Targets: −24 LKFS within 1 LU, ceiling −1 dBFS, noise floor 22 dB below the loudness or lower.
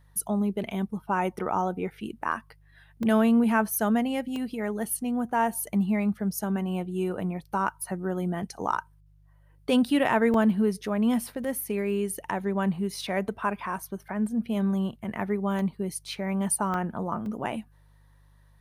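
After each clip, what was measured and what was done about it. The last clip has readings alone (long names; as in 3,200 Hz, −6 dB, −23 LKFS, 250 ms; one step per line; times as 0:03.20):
number of dropouts 8; longest dropout 1.9 ms; mains hum 50 Hz; hum harmonics up to 150 Hz; level of the hum −56 dBFS; integrated loudness −28.0 LKFS; sample peak −11.5 dBFS; target loudness −24.0 LKFS
→ repair the gap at 0:02.32/0:03.03/0:04.36/0:10.34/0:11.44/0:15.59/0:16.74/0:17.26, 1.9 ms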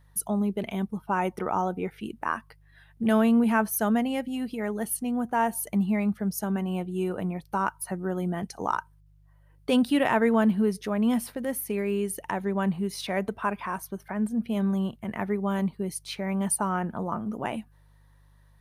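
number of dropouts 0; mains hum 50 Hz; hum harmonics up to 150 Hz; level of the hum −56 dBFS
→ hum removal 50 Hz, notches 3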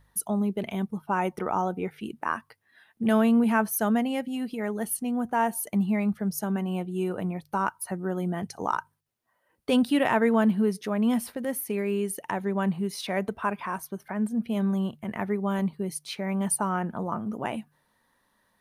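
mains hum none found; integrated loudness −28.0 LKFS; sample peak −12.0 dBFS; target loudness −24.0 LKFS
→ level +4 dB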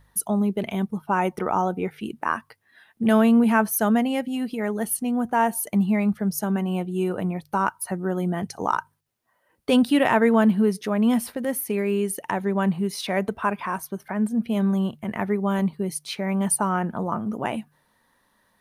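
integrated loudness −24.0 LKFS; sample peak −8.0 dBFS; background noise floor −67 dBFS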